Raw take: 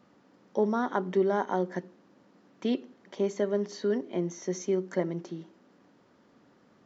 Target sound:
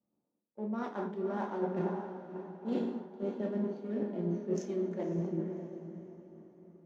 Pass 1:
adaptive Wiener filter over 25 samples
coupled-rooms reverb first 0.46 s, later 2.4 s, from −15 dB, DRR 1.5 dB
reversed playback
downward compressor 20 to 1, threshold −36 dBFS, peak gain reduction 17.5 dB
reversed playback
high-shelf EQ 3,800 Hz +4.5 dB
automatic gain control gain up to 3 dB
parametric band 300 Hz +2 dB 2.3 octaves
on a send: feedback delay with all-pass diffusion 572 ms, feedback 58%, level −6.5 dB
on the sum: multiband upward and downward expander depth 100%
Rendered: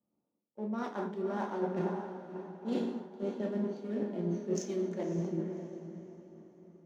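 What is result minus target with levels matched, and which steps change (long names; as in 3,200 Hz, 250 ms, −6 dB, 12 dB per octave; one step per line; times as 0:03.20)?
8,000 Hz band +8.0 dB
change: high-shelf EQ 3,800 Hz −6 dB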